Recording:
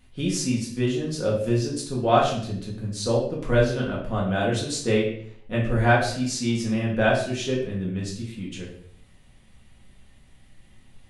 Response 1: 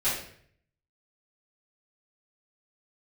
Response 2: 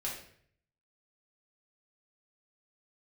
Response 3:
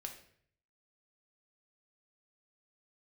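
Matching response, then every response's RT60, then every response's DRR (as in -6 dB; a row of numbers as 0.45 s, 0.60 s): 2; 0.60 s, 0.60 s, 0.60 s; -13.5 dB, -5.0 dB, 3.0 dB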